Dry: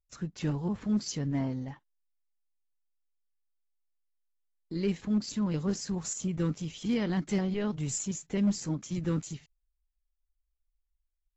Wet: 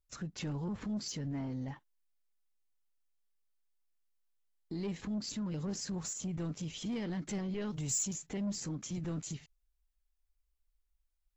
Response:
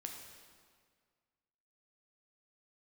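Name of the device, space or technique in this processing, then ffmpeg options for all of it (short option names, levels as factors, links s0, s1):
soft clipper into limiter: -filter_complex "[0:a]asoftclip=type=tanh:threshold=0.0531,alimiter=level_in=2.99:limit=0.0631:level=0:latency=1:release=111,volume=0.335,asettb=1/sr,asplit=3[s0][s1][s2];[s0]atrim=end=7.624[s3];[s1]atrim=start=7.62:end=8.13,asetpts=PTS-STARTPTS,afade=t=in:d=0.004:c=qsin,afade=t=out:st=0.506:d=0.004:c=qsin,highshelf=f=4900:g=10[s4];[s2]atrim=start=8.126[s5];[s3][s4]acrossfade=d=0.004:c1=hsin:c2=qsin[s6];[s6][s5]acrossfade=d=0.004:c1=qsin:c2=hsin,volume=1.19"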